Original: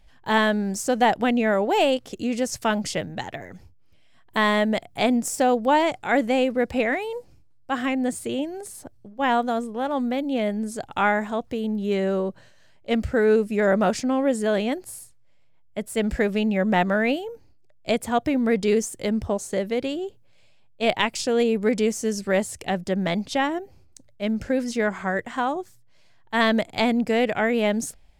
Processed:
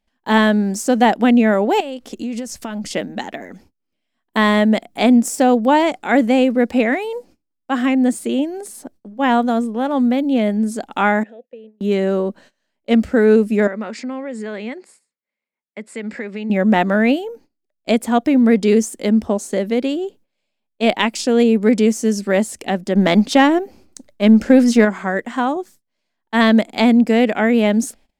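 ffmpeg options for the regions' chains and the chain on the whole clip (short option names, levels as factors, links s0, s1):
-filter_complex "[0:a]asettb=1/sr,asplit=3[s0][s1][s2];[s0]atrim=end=1.804[s3];[s1]atrim=start=1.8:end=2.91,asetpts=PTS-STARTPTS,afade=t=in:d=0.004:c=qsin,afade=t=out:st=1.106:d=0.004:c=qsin,asubboost=boost=11.5:cutoff=130,acompressor=threshold=0.0355:ratio=16:attack=3.2:release=140:knee=1:detection=peak[s4];[s2]atrim=start=2.906[s5];[s3][s4]acrossfade=d=0.004:c1=hsin:c2=qsin[s6];[s6][s5]acrossfade=d=0.004:c1=qsin:c2=hsin,asettb=1/sr,asplit=3[s7][s8][s9];[s7]atrim=end=11.234[s10];[s8]atrim=start=11.23:end=11.81,asetpts=PTS-STARTPTS,afade=t=in:d=0.004:c=qsin,afade=t=out:st=0.576:d=0.004:c=qsin,acompressor=threshold=0.0282:ratio=3:attack=3.2:release=140:knee=1:detection=peak,asplit=3[s11][s12][s13];[s11]bandpass=f=530:t=q:w=8,volume=1[s14];[s12]bandpass=f=1840:t=q:w=8,volume=0.501[s15];[s13]bandpass=f=2480:t=q:w=8,volume=0.355[s16];[s14][s15][s16]amix=inputs=3:normalize=0,equalizer=f=200:t=o:w=2.5:g=2.5[s17];[s9]atrim=start=11.806[s18];[s10][s17]acrossfade=d=0.004:c1=hsin:c2=qsin[s19];[s19][s18]acrossfade=d=0.004:c1=qsin:c2=hsin,asettb=1/sr,asplit=3[s20][s21][s22];[s20]atrim=end=13.674[s23];[s21]atrim=start=13.67:end=16.5,asetpts=PTS-STARTPTS,afade=t=in:d=0.004:c=qsin,afade=t=out:st=2.826:d=0.004:c=qsin,highpass=240,equalizer=f=300:t=q:w=4:g=-9,equalizer=f=680:t=q:w=4:g=-8,equalizer=f=2100:t=q:w=4:g=7,equalizer=f=3200:t=q:w=4:g=-5,equalizer=f=6000:t=q:w=4:g=-9,lowpass=f=7200:w=0.5412,lowpass=f=7200:w=1.3066,acompressor=threshold=0.02:ratio=2.5:attack=3.2:release=140:knee=1:detection=peak[s24];[s22]atrim=start=16.496[s25];[s23][s24]acrossfade=d=0.004:c1=hsin:c2=qsin[s26];[s26][s25]acrossfade=d=0.004:c1=qsin:c2=hsin,asettb=1/sr,asplit=3[s27][s28][s29];[s27]atrim=end=22.954[s30];[s28]atrim=start=22.95:end=24.85,asetpts=PTS-STARTPTS,afade=t=in:d=0.004:c=qsin,afade=t=out:st=1.896:d=0.004:c=qsin,aeval=exprs='if(lt(val(0),0),0.708*val(0),val(0))':c=same,acontrast=70[s31];[s29]atrim=start=24.846[s32];[s30][s31]acrossfade=d=0.004:c1=hsin:c2=qsin[s33];[s33][s32]acrossfade=d=0.004:c1=qsin:c2=hsin,agate=range=0.126:threshold=0.00447:ratio=16:detection=peak,lowshelf=f=170:t=q:w=3:g=-9,volume=1.58"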